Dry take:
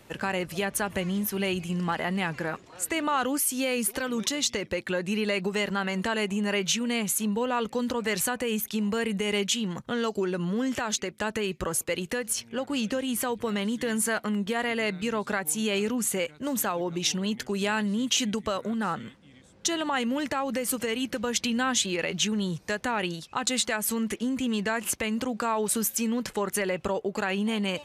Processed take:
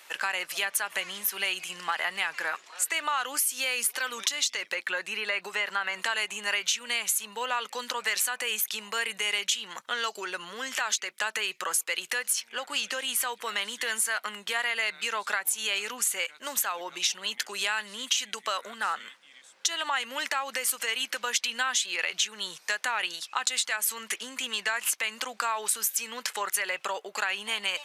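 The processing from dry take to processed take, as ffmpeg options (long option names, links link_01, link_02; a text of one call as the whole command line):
ffmpeg -i in.wav -filter_complex "[0:a]asettb=1/sr,asplit=3[link_01][link_02][link_03];[link_01]atrim=end=4.744[link_04];[link_02]atrim=start=4.74:end=6,asetpts=PTS-STARTPTS,afade=type=in:duration=0.004:curve=qsin,afade=type=out:start_time=1.256:duration=0.004:curve=qsin,acrossover=split=2600[link_05][link_06];[link_06]acompressor=threshold=-46dB:ratio=4:attack=1:release=60[link_07];[link_05][link_07]amix=inputs=2:normalize=0[link_08];[link_03]atrim=start=5.996[link_09];[link_04][link_08]acrossfade=duration=0.004:curve1=hsin:curve2=qsin[link_10];[link_10][link_09]acrossfade=duration=0.004:curve1=qsin:curve2=hsin,highpass=1200,acompressor=threshold=-31dB:ratio=6,volume=7dB" out.wav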